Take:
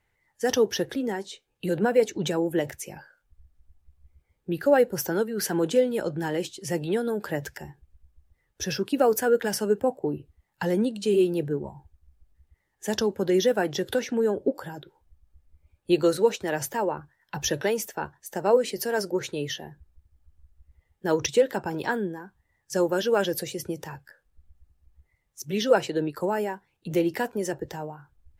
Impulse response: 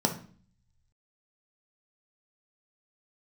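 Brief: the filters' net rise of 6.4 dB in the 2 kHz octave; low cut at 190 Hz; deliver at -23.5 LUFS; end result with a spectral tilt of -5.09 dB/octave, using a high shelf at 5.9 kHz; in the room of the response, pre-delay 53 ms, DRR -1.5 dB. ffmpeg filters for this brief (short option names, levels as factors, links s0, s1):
-filter_complex "[0:a]highpass=190,equalizer=f=2000:t=o:g=9,highshelf=f=5900:g=-5,asplit=2[s0][s1];[1:a]atrim=start_sample=2205,adelay=53[s2];[s1][s2]afir=irnorm=-1:irlink=0,volume=0.398[s3];[s0][s3]amix=inputs=2:normalize=0,volume=0.596"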